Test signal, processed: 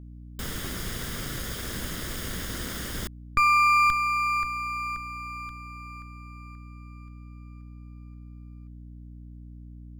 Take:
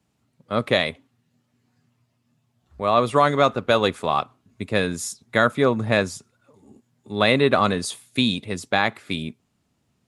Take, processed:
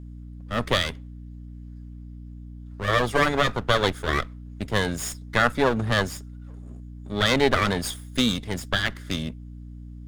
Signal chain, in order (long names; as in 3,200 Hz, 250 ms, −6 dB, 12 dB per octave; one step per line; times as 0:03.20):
lower of the sound and its delayed copy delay 0.59 ms
mains hum 60 Hz, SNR 13 dB